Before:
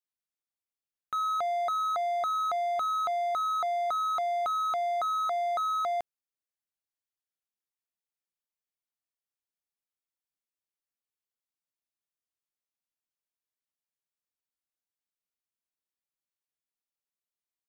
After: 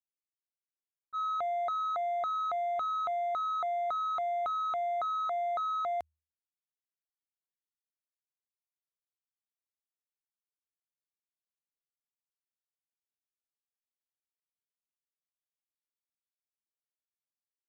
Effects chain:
adaptive Wiener filter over 9 samples
low-pass that shuts in the quiet parts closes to 1,200 Hz, open at −27.5 dBFS
downward expander −22 dBFS
parametric band 78 Hz +13.5 dB 0.2 octaves
level +7.5 dB

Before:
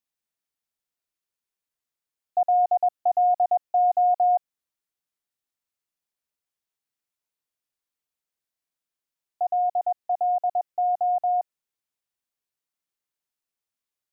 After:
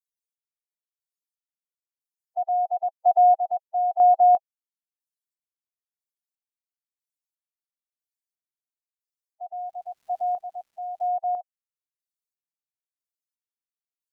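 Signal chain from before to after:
spectral dynamics exaggerated over time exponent 3
0:09.57–0:11.07: surface crackle 540 per second −60 dBFS
square-wave tremolo 1 Hz, depth 60%, duty 35%
level +5 dB

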